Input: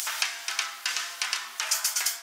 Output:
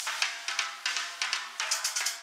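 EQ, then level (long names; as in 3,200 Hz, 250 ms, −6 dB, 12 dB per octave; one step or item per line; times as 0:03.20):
high-frequency loss of the air 51 metres
low-shelf EQ 77 Hz −5.5 dB
0.0 dB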